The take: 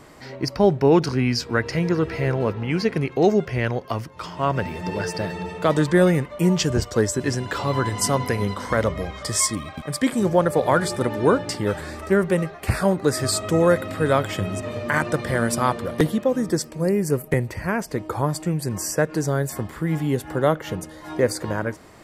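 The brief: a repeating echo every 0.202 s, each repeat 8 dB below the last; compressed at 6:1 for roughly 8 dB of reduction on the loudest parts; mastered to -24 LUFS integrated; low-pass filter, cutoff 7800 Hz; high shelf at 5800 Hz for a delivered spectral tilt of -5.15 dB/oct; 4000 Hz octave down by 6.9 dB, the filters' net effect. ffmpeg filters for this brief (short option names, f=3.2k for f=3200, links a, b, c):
-af "lowpass=7.8k,equalizer=f=4k:t=o:g=-5,highshelf=f=5.8k:g=-8,acompressor=threshold=-21dB:ratio=6,aecho=1:1:202|404|606|808|1010:0.398|0.159|0.0637|0.0255|0.0102,volume=3dB"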